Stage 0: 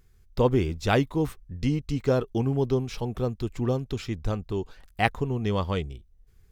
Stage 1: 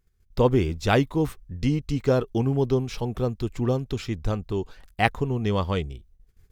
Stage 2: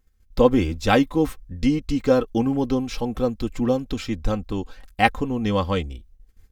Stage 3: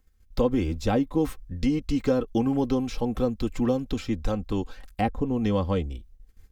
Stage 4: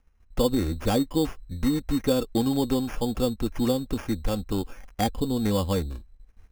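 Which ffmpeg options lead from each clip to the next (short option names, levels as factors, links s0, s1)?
-af "agate=range=0.224:threshold=0.00178:ratio=16:detection=peak,volume=1.26"
-af "aecho=1:1:3.8:0.61,volume=1.26"
-filter_complex "[0:a]acrossover=split=420|840[s0][s1][s2];[s0]acompressor=threshold=0.0794:ratio=4[s3];[s1]acompressor=threshold=0.0355:ratio=4[s4];[s2]acompressor=threshold=0.0112:ratio=4[s5];[s3][s4][s5]amix=inputs=3:normalize=0"
-af "acrusher=samples=11:mix=1:aa=0.000001"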